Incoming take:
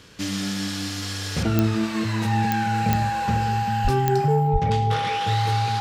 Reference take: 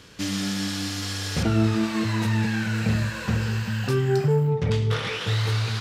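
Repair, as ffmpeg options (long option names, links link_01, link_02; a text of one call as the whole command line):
ffmpeg -i in.wav -filter_complex "[0:a]adeclick=threshold=4,bandreject=frequency=810:width=30,asplit=3[link_01][link_02][link_03];[link_01]afade=type=out:start_time=3.83:duration=0.02[link_04];[link_02]highpass=frequency=140:width=0.5412,highpass=frequency=140:width=1.3066,afade=type=in:start_time=3.83:duration=0.02,afade=type=out:start_time=3.95:duration=0.02[link_05];[link_03]afade=type=in:start_time=3.95:duration=0.02[link_06];[link_04][link_05][link_06]amix=inputs=3:normalize=0,asplit=3[link_07][link_08][link_09];[link_07]afade=type=out:start_time=4.52:duration=0.02[link_10];[link_08]highpass=frequency=140:width=0.5412,highpass=frequency=140:width=1.3066,afade=type=in:start_time=4.52:duration=0.02,afade=type=out:start_time=4.64:duration=0.02[link_11];[link_09]afade=type=in:start_time=4.64:duration=0.02[link_12];[link_10][link_11][link_12]amix=inputs=3:normalize=0" out.wav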